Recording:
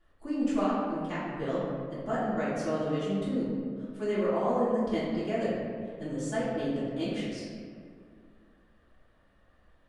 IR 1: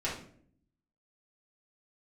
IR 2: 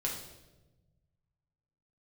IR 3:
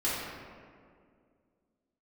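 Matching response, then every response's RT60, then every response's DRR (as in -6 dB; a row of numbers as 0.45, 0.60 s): 3; 0.55, 1.1, 2.1 s; -8.5, -2.5, -11.0 dB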